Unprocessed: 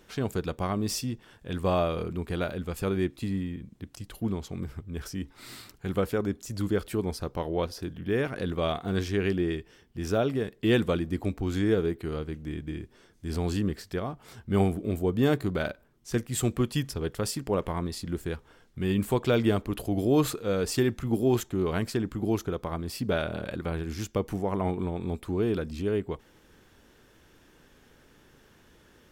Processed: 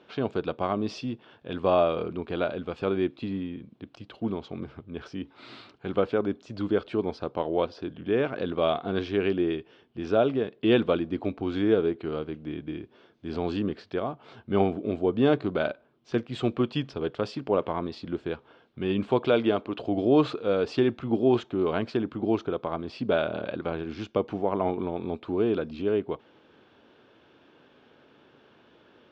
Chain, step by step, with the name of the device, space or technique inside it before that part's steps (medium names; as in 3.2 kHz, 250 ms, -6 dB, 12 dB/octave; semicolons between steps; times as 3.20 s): 19.28–19.79 s: bass shelf 180 Hz -7.5 dB; kitchen radio (cabinet simulation 170–3700 Hz, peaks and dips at 180 Hz -5 dB, 640 Hz +3 dB, 1.9 kHz -8 dB); trim +3 dB